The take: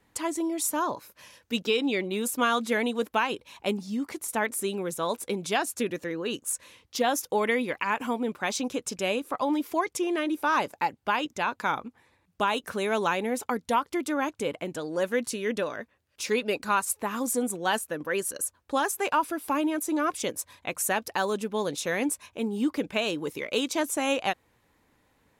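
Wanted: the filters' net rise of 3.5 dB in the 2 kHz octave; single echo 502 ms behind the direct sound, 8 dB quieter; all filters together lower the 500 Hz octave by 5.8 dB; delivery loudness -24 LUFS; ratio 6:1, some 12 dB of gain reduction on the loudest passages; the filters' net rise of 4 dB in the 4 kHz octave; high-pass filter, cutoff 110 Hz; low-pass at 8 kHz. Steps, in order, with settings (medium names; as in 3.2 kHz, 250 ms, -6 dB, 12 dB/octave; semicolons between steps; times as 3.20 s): high-pass 110 Hz; low-pass 8 kHz; peaking EQ 500 Hz -7.5 dB; peaking EQ 2 kHz +4 dB; peaking EQ 4 kHz +4 dB; compression 6:1, threshold -33 dBFS; delay 502 ms -8 dB; trim +12.5 dB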